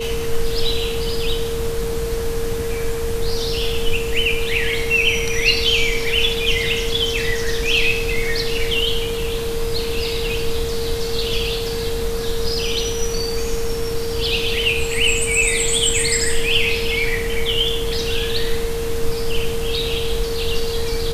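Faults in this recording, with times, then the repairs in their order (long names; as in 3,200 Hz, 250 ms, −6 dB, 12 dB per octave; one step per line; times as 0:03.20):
whistle 460 Hz −23 dBFS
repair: notch filter 460 Hz, Q 30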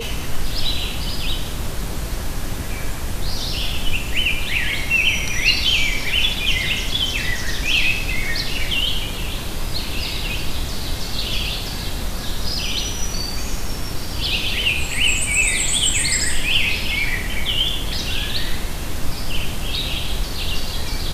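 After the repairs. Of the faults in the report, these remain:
none of them is left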